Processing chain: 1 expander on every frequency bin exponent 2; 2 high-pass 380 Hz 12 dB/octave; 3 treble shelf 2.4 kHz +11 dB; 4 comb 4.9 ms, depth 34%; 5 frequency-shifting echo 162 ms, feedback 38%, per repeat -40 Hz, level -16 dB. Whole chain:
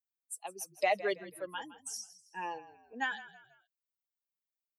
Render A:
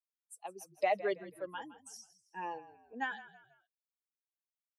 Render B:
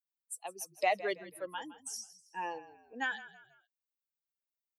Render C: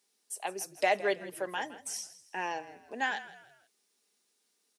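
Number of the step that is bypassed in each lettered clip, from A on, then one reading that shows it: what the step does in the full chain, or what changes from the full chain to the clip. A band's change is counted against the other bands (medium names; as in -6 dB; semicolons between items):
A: 3, 8 kHz band -9.0 dB; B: 4, 125 Hz band -1.5 dB; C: 1, loudness change +3.0 LU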